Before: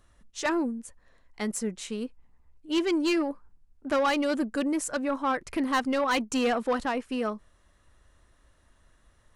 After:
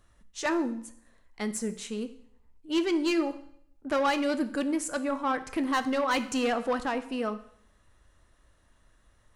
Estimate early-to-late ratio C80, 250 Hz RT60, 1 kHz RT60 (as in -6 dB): 17.0 dB, 0.70 s, 0.65 s